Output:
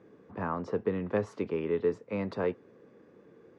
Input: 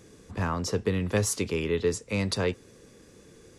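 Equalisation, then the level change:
high-pass filter 170 Hz 12 dB per octave
low-pass filter 1,300 Hz 12 dB per octave
low-shelf EQ 410 Hz −3 dB
0.0 dB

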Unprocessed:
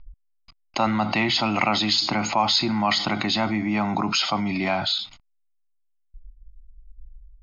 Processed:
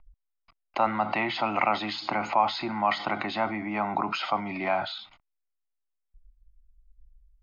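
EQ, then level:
three-way crossover with the lows and the highs turned down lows −12 dB, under 390 Hz, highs −12 dB, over 2,900 Hz
high-shelf EQ 3,800 Hz −11.5 dB
0.0 dB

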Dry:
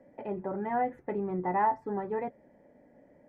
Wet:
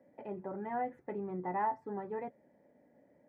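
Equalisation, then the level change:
high-pass filter 85 Hz
−6.5 dB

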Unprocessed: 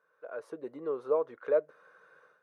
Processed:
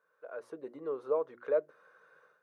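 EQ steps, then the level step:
mains-hum notches 60/120/180/240/300/360 Hz
−2.5 dB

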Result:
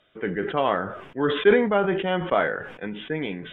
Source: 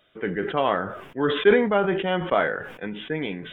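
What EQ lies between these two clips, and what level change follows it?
high-frequency loss of the air 58 metres
0.0 dB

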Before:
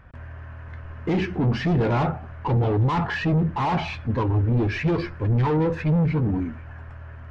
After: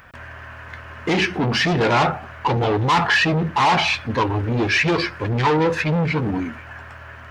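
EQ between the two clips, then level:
spectral tilt +3.5 dB per octave
+8.5 dB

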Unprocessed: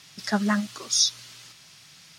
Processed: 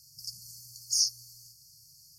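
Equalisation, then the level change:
linear-phase brick-wall band-stop 150–4,300 Hz
low-shelf EQ 64 Hz +10 dB
parametric band 13,000 Hz +14.5 dB 0.4 octaves
−5.0 dB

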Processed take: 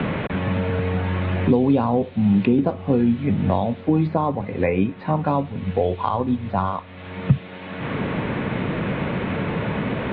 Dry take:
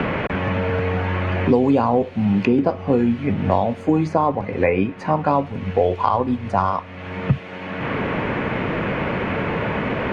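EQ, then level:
dynamic equaliser 160 Hz, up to +6 dB, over −30 dBFS, Q 0.77
low-pass with resonance 3,800 Hz, resonance Q 7.4
high-frequency loss of the air 390 metres
−3.5 dB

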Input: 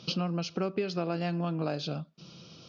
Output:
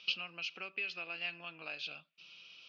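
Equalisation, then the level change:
resonant band-pass 2,600 Hz, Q 4.9
+8.0 dB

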